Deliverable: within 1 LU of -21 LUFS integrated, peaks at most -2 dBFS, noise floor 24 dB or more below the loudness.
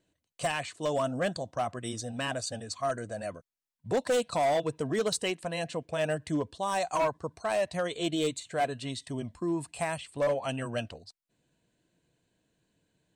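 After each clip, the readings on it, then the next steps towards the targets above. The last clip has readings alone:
clipped 1.4%; flat tops at -22.5 dBFS; loudness -32.0 LUFS; peak -22.5 dBFS; loudness target -21.0 LUFS
-> clip repair -22.5 dBFS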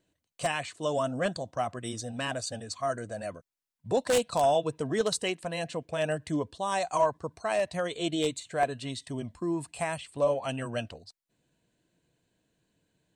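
clipped 0.0%; loudness -31.0 LUFS; peak -13.5 dBFS; loudness target -21.0 LUFS
-> gain +10 dB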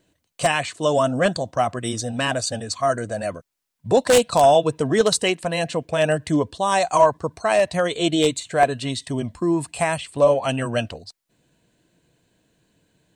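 loudness -21.0 LUFS; peak -3.5 dBFS; noise floor -76 dBFS

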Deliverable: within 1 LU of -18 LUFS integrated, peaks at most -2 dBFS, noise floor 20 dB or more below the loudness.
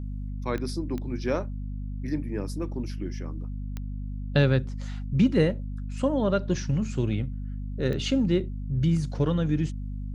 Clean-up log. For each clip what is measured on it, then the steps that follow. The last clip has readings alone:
clicks 4; hum 50 Hz; harmonics up to 250 Hz; hum level -31 dBFS; loudness -28.0 LUFS; peak -8.5 dBFS; loudness target -18.0 LUFS
-> de-click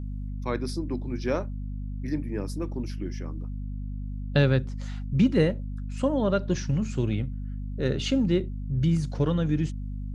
clicks 0; hum 50 Hz; harmonics up to 250 Hz; hum level -31 dBFS
-> de-hum 50 Hz, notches 5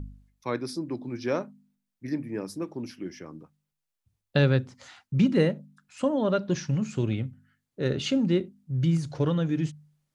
hum none; loudness -28.0 LUFS; peak -9.5 dBFS; loudness target -18.0 LUFS
-> gain +10 dB; limiter -2 dBFS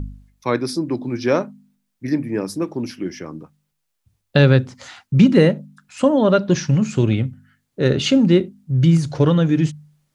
loudness -18.0 LUFS; peak -2.0 dBFS; noise floor -74 dBFS

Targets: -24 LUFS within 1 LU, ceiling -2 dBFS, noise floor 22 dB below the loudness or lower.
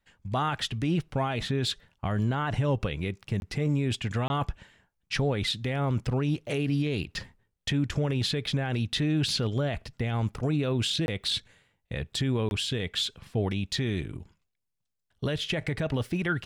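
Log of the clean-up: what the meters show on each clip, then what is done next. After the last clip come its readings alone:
dropouts 4; longest dropout 21 ms; loudness -29.5 LUFS; peak -18.0 dBFS; loudness target -24.0 LUFS
-> interpolate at 3.4/4.28/11.06/12.49, 21 ms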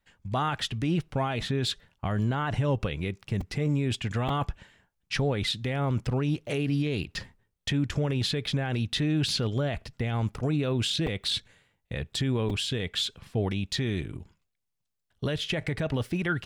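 dropouts 0; loudness -29.5 LUFS; peak -15.0 dBFS; loudness target -24.0 LUFS
-> gain +5.5 dB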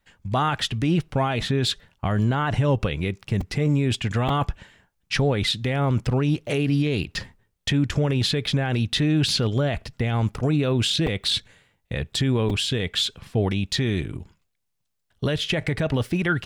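loudness -24.0 LUFS; peak -9.5 dBFS; noise floor -75 dBFS

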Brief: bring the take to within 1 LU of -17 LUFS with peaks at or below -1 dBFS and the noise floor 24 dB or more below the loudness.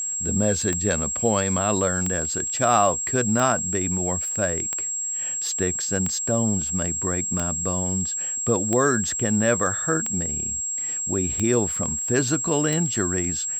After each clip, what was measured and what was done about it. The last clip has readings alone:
clicks 10; steady tone 7600 Hz; tone level -25 dBFS; loudness -22.0 LUFS; peak -7.0 dBFS; loudness target -17.0 LUFS
-> de-click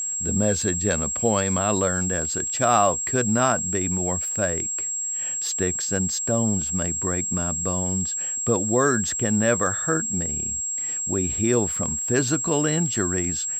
clicks 0; steady tone 7600 Hz; tone level -25 dBFS
-> notch 7600 Hz, Q 30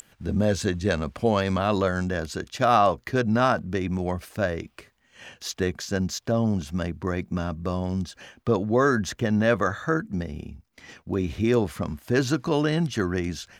steady tone none; loudness -25.5 LUFS; peak -8.0 dBFS; loudness target -17.0 LUFS
-> gain +8.5 dB; limiter -1 dBFS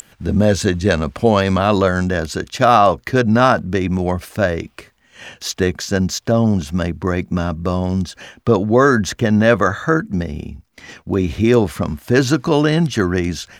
loudness -17.0 LUFS; peak -1.0 dBFS; noise floor -56 dBFS

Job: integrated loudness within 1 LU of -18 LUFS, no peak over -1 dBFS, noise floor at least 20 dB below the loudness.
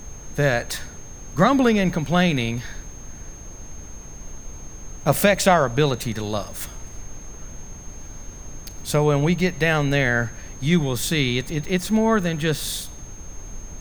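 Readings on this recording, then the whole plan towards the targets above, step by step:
steady tone 6400 Hz; tone level -42 dBFS; noise floor -39 dBFS; noise floor target -42 dBFS; loudness -21.5 LUFS; peak -2.5 dBFS; loudness target -18.0 LUFS
-> notch 6400 Hz, Q 30; noise print and reduce 6 dB; gain +3.5 dB; limiter -1 dBFS

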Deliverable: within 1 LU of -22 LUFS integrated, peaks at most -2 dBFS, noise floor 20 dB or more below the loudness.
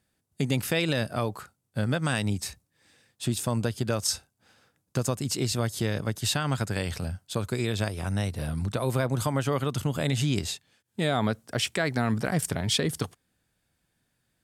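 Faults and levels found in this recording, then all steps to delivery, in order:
loudness -28.5 LUFS; peak -12.5 dBFS; loudness target -22.0 LUFS
-> gain +6.5 dB

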